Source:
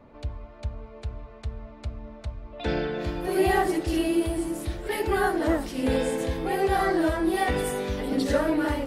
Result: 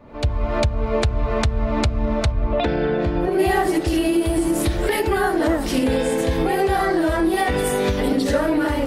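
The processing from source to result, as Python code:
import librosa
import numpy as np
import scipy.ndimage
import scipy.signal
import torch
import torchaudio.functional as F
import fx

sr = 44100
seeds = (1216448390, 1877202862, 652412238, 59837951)

y = fx.recorder_agc(x, sr, target_db=-15.5, rise_db_per_s=61.0, max_gain_db=30)
y = fx.lowpass(y, sr, hz=fx.line((2.31, 2600.0), (3.38, 1100.0)), slope=6, at=(2.31, 3.38), fade=0.02)
y = y * 10.0 ** (3.5 / 20.0)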